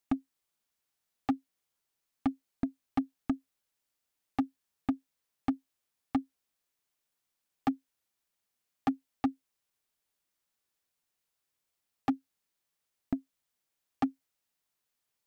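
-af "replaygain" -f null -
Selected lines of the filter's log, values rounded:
track_gain = +15.0 dB
track_peak = 0.074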